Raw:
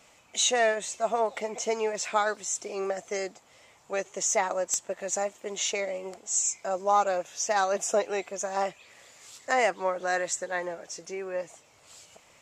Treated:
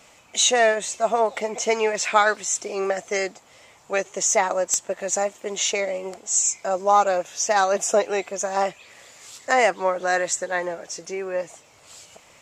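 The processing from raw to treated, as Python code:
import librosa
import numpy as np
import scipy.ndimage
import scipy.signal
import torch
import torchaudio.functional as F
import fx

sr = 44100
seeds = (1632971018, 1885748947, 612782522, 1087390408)

y = fx.dynamic_eq(x, sr, hz=2200.0, q=0.84, threshold_db=-41.0, ratio=4.0, max_db=6, at=(1.6, 3.98))
y = y * 10.0 ** (6.0 / 20.0)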